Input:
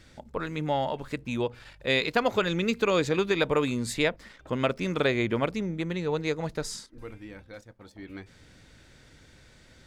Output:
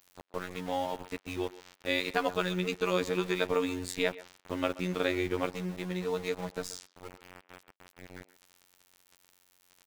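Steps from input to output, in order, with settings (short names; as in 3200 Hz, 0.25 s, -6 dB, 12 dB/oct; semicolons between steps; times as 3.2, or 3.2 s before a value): robotiser 90.8 Hz; sample gate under -39 dBFS; speakerphone echo 0.13 s, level -17 dB; gain -2.5 dB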